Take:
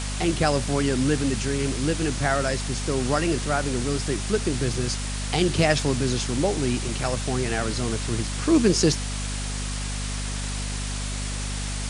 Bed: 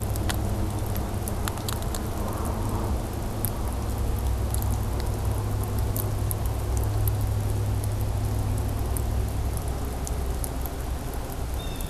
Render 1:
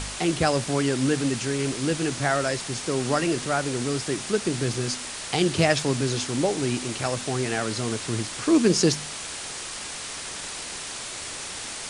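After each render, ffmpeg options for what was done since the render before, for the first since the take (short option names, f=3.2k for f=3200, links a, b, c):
-af "bandreject=f=50:t=h:w=4,bandreject=f=100:t=h:w=4,bandreject=f=150:t=h:w=4,bandreject=f=200:t=h:w=4,bandreject=f=250:t=h:w=4"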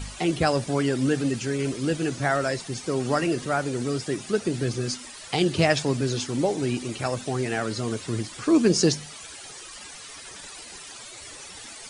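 -af "afftdn=nr=13:nf=-35"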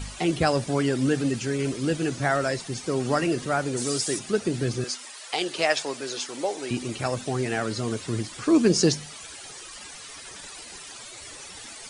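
-filter_complex "[0:a]asplit=3[a][b][c];[a]afade=t=out:st=3.76:d=0.02[d];[b]bass=f=250:g=-5,treble=f=4k:g=13,afade=t=in:st=3.76:d=0.02,afade=t=out:st=4.18:d=0.02[e];[c]afade=t=in:st=4.18:d=0.02[f];[d][e][f]amix=inputs=3:normalize=0,asettb=1/sr,asplit=3[g][h][i];[g]atrim=end=4.844[j];[h]atrim=start=4.84:end=6.71,asetpts=PTS-STARTPTS,afade=t=in:d=0.004:c=qsin,afade=t=out:st=1.866:d=0.004:c=qsin,highpass=510[k];[i]atrim=start=6.706[l];[j][k]acrossfade=d=0.004:c1=hsin:c2=qsin[m];[m][l]acrossfade=d=0.004:c1=qsin:c2=hsin"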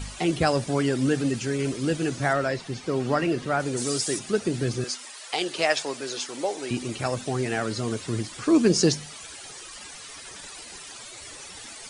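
-filter_complex "[0:a]asettb=1/sr,asplit=3[a][b][c];[a]atrim=end=2.334[d];[b]atrim=start=2.33:end=3.6,asetpts=PTS-STARTPTS,afade=t=in:d=0.004:c=qsin,afade=t=out:st=1.266:d=0.004:c=qsin,acrossover=split=4700[e][f];[f]acompressor=threshold=-51dB:ratio=4:attack=1:release=60[g];[e][g]amix=inputs=2:normalize=0[h];[c]atrim=start=3.596[i];[d][h]acrossfade=d=0.004:c1=hsin:c2=qsin[j];[j][i]acrossfade=d=0.004:c1=qsin:c2=hsin"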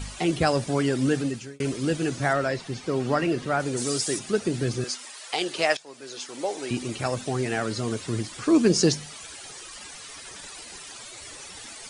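-filter_complex "[0:a]asplit=3[a][b][c];[a]atrim=end=1.6,asetpts=PTS-STARTPTS,afade=t=out:st=1.16:d=0.44[d];[b]atrim=start=1.6:end=5.77,asetpts=PTS-STARTPTS,afade=t=in:d=0.004:c=hsin,afade=t=out:st=4.166:d=0.004:c=hsin:silence=0.0749894[e];[c]atrim=start=5.77,asetpts=PTS-STARTPTS,afade=t=in:d=0.8:silence=0.0749894[f];[d][e][f]concat=n=3:v=0:a=1"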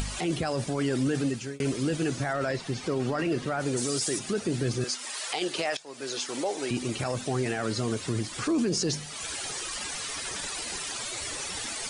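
-af "acompressor=mode=upward:threshold=-26dB:ratio=2.5,alimiter=limit=-19.5dB:level=0:latency=1:release=12"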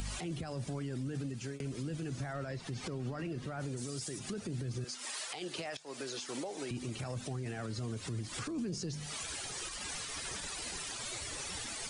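-filter_complex "[0:a]acrossover=split=180[a][b];[b]acompressor=threshold=-37dB:ratio=10[c];[a][c]amix=inputs=2:normalize=0,alimiter=level_in=6.5dB:limit=-24dB:level=0:latency=1:release=128,volume=-6.5dB"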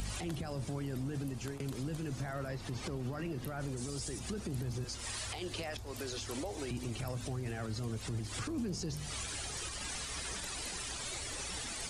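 -filter_complex "[1:a]volume=-21.5dB[a];[0:a][a]amix=inputs=2:normalize=0"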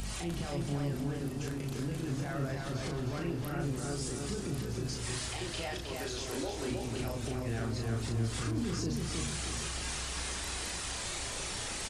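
-filter_complex "[0:a]asplit=2[a][b];[b]adelay=35,volume=-3.5dB[c];[a][c]amix=inputs=2:normalize=0,asplit=2[d][e];[e]adelay=313,lowpass=f=4.6k:p=1,volume=-3dB,asplit=2[f][g];[g]adelay=313,lowpass=f=4.6k:p=1,volume=0.48,asplit=2[h][i];[i]adelay=313,lowpass=f=4.6k:p=1,volume=0.48,asplit=2[j][k];[k]adelay=313,lowpass=f=4.6k:p=1,volume=0.48,asplit=2[l][m];[m]adelay=313,lowpass=f=4.6k:p=1,volume=0.48,asplit=2[n][o];[o]adelay=313,lowpass=f=4.6k:p=1,volume=0.48[p];[f][h][j][l][n][p]amix=inputs=6:normalize=0[q];[d][q]amix=inputs=2:normalize=0"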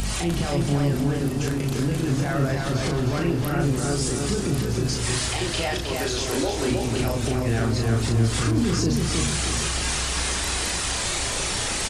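-af "volume=12dB"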